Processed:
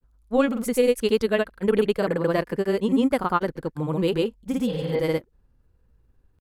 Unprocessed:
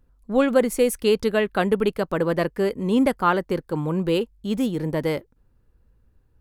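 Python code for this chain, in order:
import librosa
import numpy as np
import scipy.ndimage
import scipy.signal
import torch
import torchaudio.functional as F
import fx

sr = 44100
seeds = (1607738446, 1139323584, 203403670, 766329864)

y = fx.spec_repair(x, sr, seeds[0], start_s=4.7, length_s=0.31, low_hz=280.0, high_hz=5000.0, source='both')
y = fx.granulator(y, sr, seeds[1], grain_ms=100.0, per_s=20.0, spray_ms=100.0, spread_st=0)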